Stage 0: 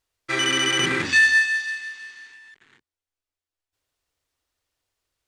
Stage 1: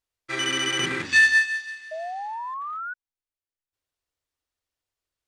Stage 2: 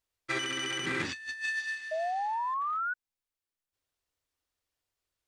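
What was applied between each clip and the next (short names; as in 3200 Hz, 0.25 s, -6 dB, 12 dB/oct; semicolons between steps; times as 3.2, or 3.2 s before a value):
painted sound rise, 1.91–2.94, 620–1500 Hz -26 dBFS; upward expander 1.5:1, over -30 dBFS
negative-ratio compressor -30 dBFS, ratio -1; gain -4 dB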